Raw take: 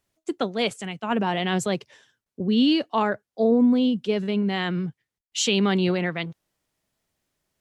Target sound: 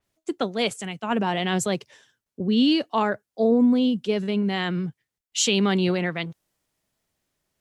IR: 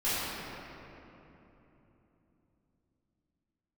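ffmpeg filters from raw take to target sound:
-af "adynamicequalizer=threshold=0.00708:dfrequency=5500:dqfactor=0.7:tfrequency=5500:tqfactor=0.7:attack=5:release=100:ratio=0.375:range=2.5:mode=boostabove:tftype=highshelf"

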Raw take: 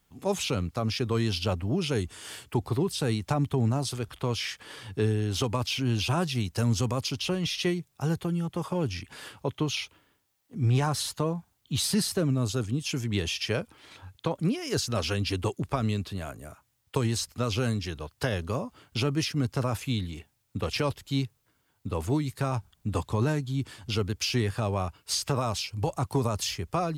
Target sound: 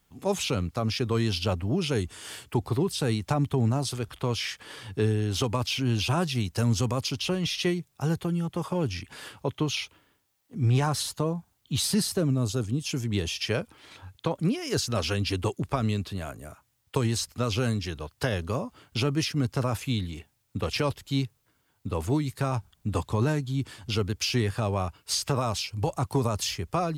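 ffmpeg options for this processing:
ffmpeg -i in.wav -filter_complex "[0:a]asplit=3[link_01][link_02][link_03];[link_01]afade=type=out:start_time=11.02:duration=0.02[link_04];[link_02]adynamicequalizer=threshold=0.00501:dfrequency=2000:dqfactor=0.7:tfrequency=2000:tqfactor=0.7:attack=5:release=100:ratio=0.375:range=2.5:mode=cutabove:tftype=bell,afade=type=in:start_time=11.02:duration=0.02,afade=type=out:start_time=13.4:duration=0.02[link_05];[link_03]afade=type=in:start_time=13.4:duration=0.02[link_06];[link_04][link_05][link_06]amix=inputs=3:normalize=0,volume=1dB" out.wav

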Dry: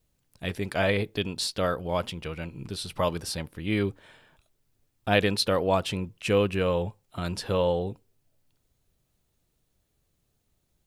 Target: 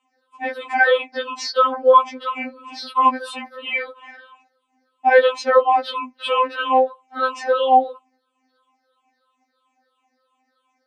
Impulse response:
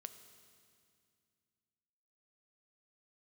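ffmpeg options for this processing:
-filter_complex "[0:a]afftfilt=real='re*pow(10,22/40*sin(2*PI*(0.67*log(max(b,1)*sr/1024/100)/log(2)-(-3)*(pts-256)/sr)))':imag='im*pow(10,22/40*sin(2*PI*(0.67*log(max(b,1)*sr/1024/100)/log(2)-(-3)*(pts-256)/sr)))':win_size=1024:overlap=0.75,equalizer=frequency=990:width_type=o:width=1.2:gain=14,asplit=2[link_01][link_02];[link_02]acompressor=threshold=-22dB:ratio=10,volume=-1.5dB[link_03];[link_01][link_03]amix=inputs=2:normalize=0,highpass=280,lowpass=4000,afftfilt=real='re*3.46*eq(mod(b,12),0)':imag='im*3.46*eq(mod(b,12),0)':win_size=2048:overlap=0.75"

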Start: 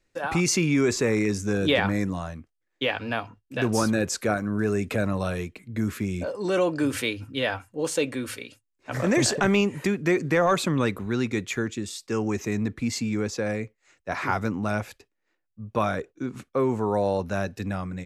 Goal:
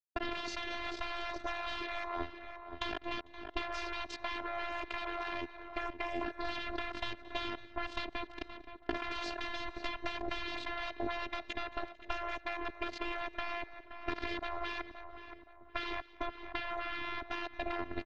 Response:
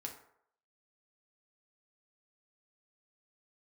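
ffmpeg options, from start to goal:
-filter_complex "[0:a]asplit=2[link_01][link_02];[link_02]alimiter=limit=-19.5dB:level=0:latency=1:release=11,volume=1dB[link_03];[link_01][link_03]amix=inputs=2:normalize=0,equalizer=frequency=240:width_type=o:width=0.88:gain=4.5,acrusher=bits=2:mix=0:aa=0.5,lowpass=frequency=4100:width=0.5412,lowpass=frequency=4100:width=1.3066,afftfilt=real='re*lt(hypot(re,im),0.178)':imag='im*lt(hypot(re,im),0.178)':win_size=1024:overlap=0.75,asplit=2[link_04][link_05];[link_05]adelay=522,lowpass=frequency=2000:poles=1,volume=-16dB,asplit=2[link_06][link_07];[link_07]adelay=522,lowpass=frequency=2000:poles=1,volume=0.36,asplit=2[link_08][link_09];[link_09]adelay=522,lowpass=frequency=2000:poles=1,volume=0.36[link_10];[link_04][link_06][link_08][link_10]amix=inputs=4:normalize=0,afftfilt=real='hypot(re,im)*cos(PI*b)':imag='0':win_size=512:overlap=0.75,acompressor=threshold=-35dB:ratio=6,tiltshelf=frequency=690:gain=5.5,aecho=1:1:224|448|672:0.1|0.041|0.0168,volume=4dB"

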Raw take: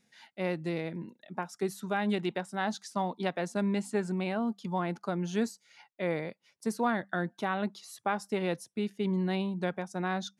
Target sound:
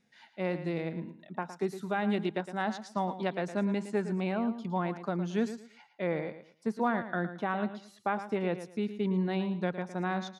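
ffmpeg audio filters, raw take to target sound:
ffmpeg -i in.wav -filter_complex "[0:a]aemphasis=mode=reproduction:type=50kf,asettb=1/sr,asplit=3[link_01][link_02][link_03];[link_01]atrim=end=6.074[link_04];[link_02]atrim=start=6.07:end=8.54,asetpts=PTS-STARTPTS,afade=type=in:duration=0.004:curve=qsin,afade=type=out:start_time=2.466:duration=0.004:curve=qsin,acrossover=split=3300[link_05][link_06];[link_06]acompressor=threshold=-58dB:ratio=4:attack=1:release=60[link_07];[link_05][link_07]amix=inputs=2:normalize=0[link_08];[link_03]atrim=start=8.536[link_09];[link_04][link_08]acrossfade=duration=0.004:curve1=hsin:curve2=qsin[link_10];[link_10][link_09]acrossfade=duration=0.004:curve1=qsin:curve2=hsin,aecho=1:1:112|224|336:0.266|0.0639|0.0153" out.wav

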